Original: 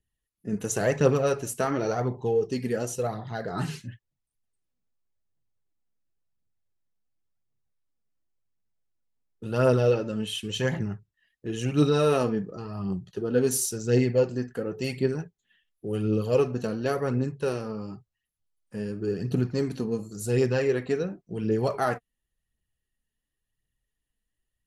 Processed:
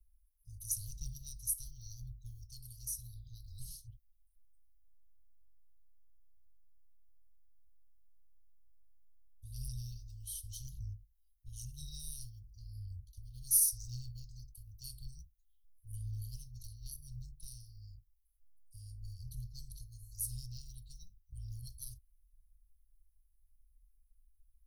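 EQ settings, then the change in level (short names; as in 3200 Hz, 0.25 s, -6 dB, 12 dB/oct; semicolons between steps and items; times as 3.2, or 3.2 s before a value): inverse Chebyshev band-stop 220–1900 Hz, stop band 70 dB; low shelf 180 Hz +9.5 dB; fixed phaser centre 1600 Hz, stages 8; +9.0 dB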